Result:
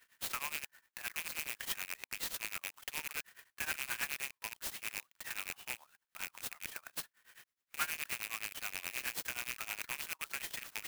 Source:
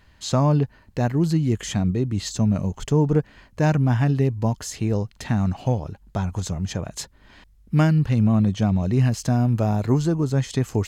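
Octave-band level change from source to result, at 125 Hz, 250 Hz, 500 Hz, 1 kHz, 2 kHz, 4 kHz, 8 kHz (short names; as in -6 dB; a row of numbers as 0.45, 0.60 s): under -40 dB, -39.5 dB, -30.5 dB, -16.5 dB, -2.5 dB, -6.0 dB, -6.5 dB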